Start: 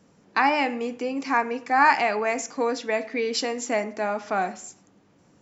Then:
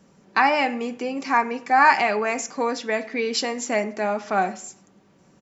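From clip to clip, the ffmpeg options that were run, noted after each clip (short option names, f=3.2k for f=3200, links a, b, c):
-af "aecho=1:1:5.2:0.33,volume=2dB"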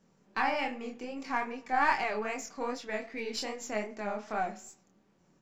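-af "aeval=exprs='if(lt(val(0),0),0.708*val(0),val(0))':c=same,flanger=delay=22.5:depth=5.9:speed=2.5,volume=-7dB"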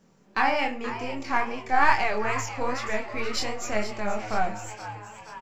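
-filter_complex "[0:a]asplit=8[a][b][c][d][e][f][g][h];[b]adelay=476,afreqshift=110,volume=-12dB[i];[c]adelay=952,afreqshift=220,volume=-16.3dB[j];[d]adelay=1428,afreqshift=330,volume=-20.6dB[k];[e]adelay=1904,afreqshift=440,volume=-24.9dB[l];[f]adelay=2380,afreqshift=550,volume=-29.2dB[m];[g]adelay=2856,afreqshift=660,volume=-33.5dB[n];[h]adelay=3332,afreqshift=770,volume=-37.8dB[o];[a][i][j][k][l][m][n][o]amix=inputs=8:normalize=0,asubboost=boost=6.5:cutoff=110,volume=6.5dB"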